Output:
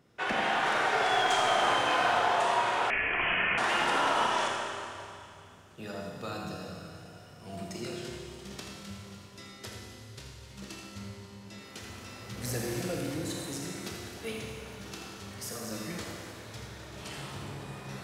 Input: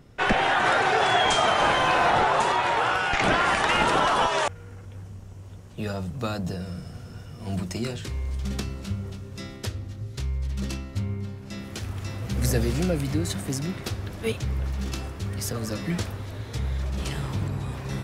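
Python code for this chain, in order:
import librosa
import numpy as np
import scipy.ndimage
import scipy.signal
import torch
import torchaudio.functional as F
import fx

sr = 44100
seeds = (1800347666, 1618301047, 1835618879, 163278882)

p1 = fx.highpass(x, sr, hz=280.0, slope=6)
p2 = np.clip(p1, -10.0 ** (-15.5 / 20.0), 10.0 ** (-15.5 / 20.0))
p3 = p2 + fx.echo_single(p2, sr, ms=82, db=-8.5, dry=0)
p4 = fx.rev_schroeder(p3, sr, rt60_s=2.5, comb_ms=25, drr_db=-0.5)
p5 = fx.freq_invert(p4, sr, carrier_hz=3200, at=(2.9, 3.58))
y = p5 * librosa.db_to_amplitude(-8.5)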